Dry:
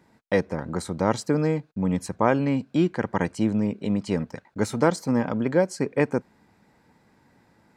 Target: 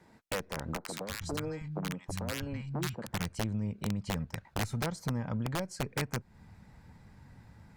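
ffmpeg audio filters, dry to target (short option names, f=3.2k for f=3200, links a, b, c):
-filter_complex "[0:a]asubboost=boost=9:cutoff=110,acompressor=threshold=-31dB:ratio=6,adynamicequalizer=threshold=0.00158:dfrequency=270:dqfactor=7.2:tfrequency=270:tqfactor=7.2:attack=5:release=100:ratio=0.375:range=1.5:mode=cutabove:tftype=bell,aeval=exprs='(mod(17.8*val(0)+1,2)-1)/17.8':c=same,asettb=1/sr,asplit=3[a][b][c];[a]atrim=end=0.774[d];[b]atrim=start=0.77:end=3.07,asetpts=PTS-STARTPTS,afade=t=in:d=0.004:c=qsin,afade=t=out:st=2.296:d=0.004:c=qsin,acrossover=split=170|1000[e][f][g];[g]adelay=80[h];[e]adelay=320[i];[i][f][h]amix=inputs=3:normalize=0,atrim=end_sample=101430[j];[c]atrim=start=3.066[k];[d][j]acrossfade=d=0.004:c1=hsin:c2=qsin[l];[l][k]acrossfade=d=0.004:c1=qsin:c2=hsin" -ar 48000 -c:a libopus -b:a 48k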